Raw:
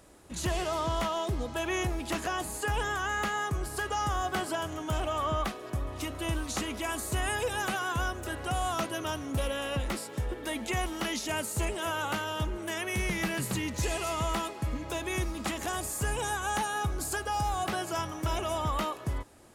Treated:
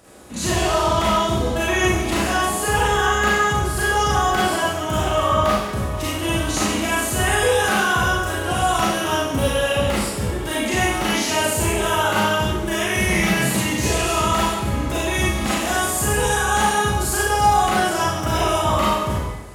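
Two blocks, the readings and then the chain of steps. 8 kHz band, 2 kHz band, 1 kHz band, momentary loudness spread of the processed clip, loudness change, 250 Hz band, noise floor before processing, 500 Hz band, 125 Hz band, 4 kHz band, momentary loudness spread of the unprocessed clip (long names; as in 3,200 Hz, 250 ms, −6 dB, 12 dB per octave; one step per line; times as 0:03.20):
+13.0 dB, +13.0 dB, +13.0 dB, 5 LU, +12.5 dB, +12.5 dB, −43 dBFS, +13.0 dB, +11.0 dB, +13.0 dB, 4 LU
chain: high-pass filter 58 Hz
four-comb reverb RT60 0.92 s, combs from 30 ms, DRR −7 dB
level +5 dB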